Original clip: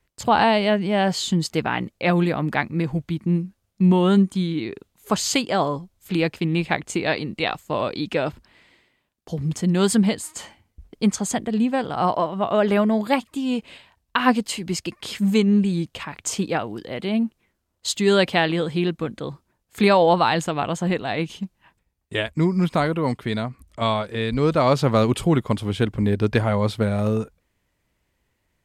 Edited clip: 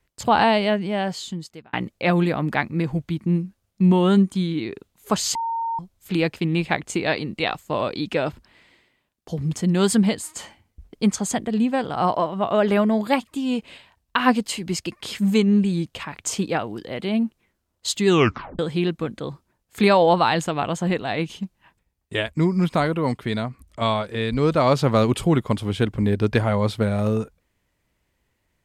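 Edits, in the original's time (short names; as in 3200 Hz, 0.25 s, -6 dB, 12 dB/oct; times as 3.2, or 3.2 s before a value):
0.54–1.73 fade out linear
5.35–5.79 bleep 916 Hz -22.5 dBFS
18.07 tape stop 0.52 s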